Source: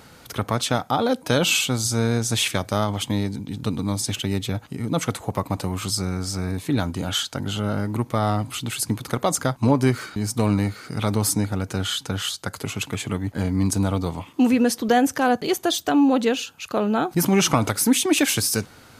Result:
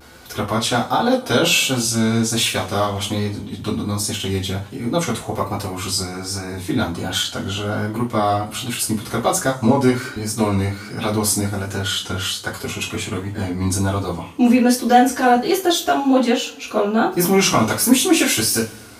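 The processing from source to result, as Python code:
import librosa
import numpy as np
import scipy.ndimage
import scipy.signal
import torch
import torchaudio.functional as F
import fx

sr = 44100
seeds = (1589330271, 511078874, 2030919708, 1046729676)

y = fx.rev_double_slope(x, sr, seeds[0], early_s=0.25, late_s=1.9, knee_db=-27, drr_db=-7.0)
y = fx.vibrato(y, sr, rate_hz=1.3, depth_cents=51.0)
y = y * librosa.db_to_amplitude(-3.5)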